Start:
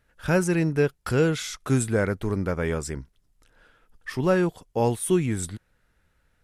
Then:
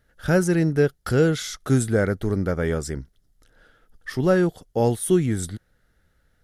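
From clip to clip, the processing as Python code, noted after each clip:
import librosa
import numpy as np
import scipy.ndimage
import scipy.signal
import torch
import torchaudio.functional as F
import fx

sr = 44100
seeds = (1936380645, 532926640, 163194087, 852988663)

y = fx.graphic_eq_31(x, sr, hz=(1000, 2500, 8000), db=(-10, -10, -4))
y = F.gain(torch.from_numpy(y), 3.0).numpy()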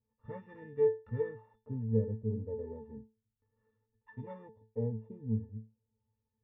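y = np.r_[np.sort(x[:len(x) // 16 * 16].reshape(-1, 16), axis=1).ravel(), x[len(x) // 16 * 16:]]
y = fx.filter_lfo_lowpass(y, sr, shape='sine', hz=0.33, low_hz=530.0, high_hz=1700.0, q=1.6)
y = fx.octave_resonator(y, sr, note='A', decay_s=0.28)
y = F.gain(torch.from_numpy(y), -3.0).numpy()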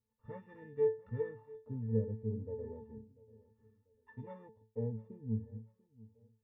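y = fx.echo_feedback(x, sr, ms=692, feedback_pct=33, wet_db=-21.0)
y = F.gain(torch.from_numpy(y), -3.0).numpy()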